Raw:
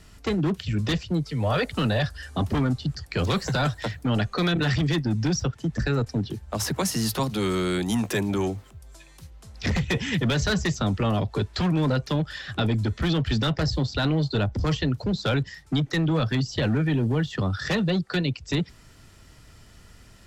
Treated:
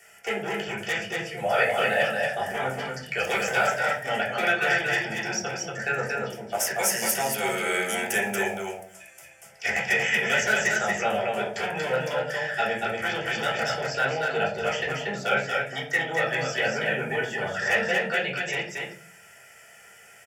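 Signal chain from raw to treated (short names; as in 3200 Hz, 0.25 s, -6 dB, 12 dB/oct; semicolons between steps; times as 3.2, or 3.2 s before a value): HPF 460 Hz 12 dB/oct; high shelf 3000 Hz +7.5 dB; fixed phaser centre 1100 Hz, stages 6; echo 0.234 s -3.5 dB; reverb RT60 0.45 s, pre-delay 3 ms, DRR -5 dB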